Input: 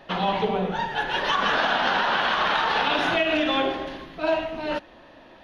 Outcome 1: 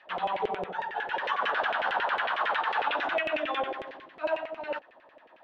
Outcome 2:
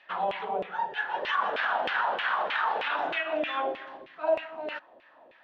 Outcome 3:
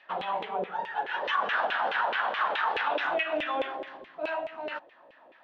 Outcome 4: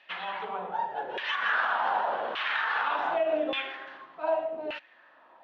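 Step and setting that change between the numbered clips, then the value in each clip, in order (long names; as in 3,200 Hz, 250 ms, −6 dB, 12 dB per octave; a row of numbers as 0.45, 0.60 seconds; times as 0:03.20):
auto-filter band-pass, speed: 11, 3.2, 4.7, 0.85 Hertz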